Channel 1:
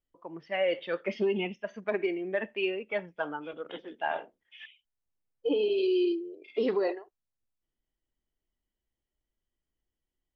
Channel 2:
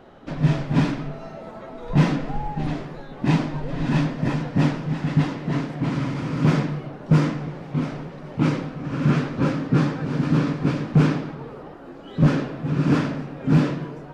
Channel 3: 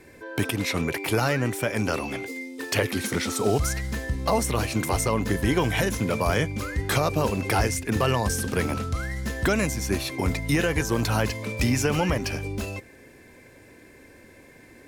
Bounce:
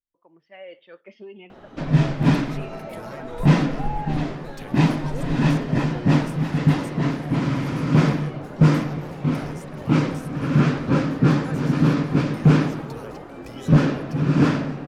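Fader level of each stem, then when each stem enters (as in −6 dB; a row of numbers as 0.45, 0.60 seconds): −13.0, +2.0, −19.0 decibels; 0.00, 1.50, 1.85 seconds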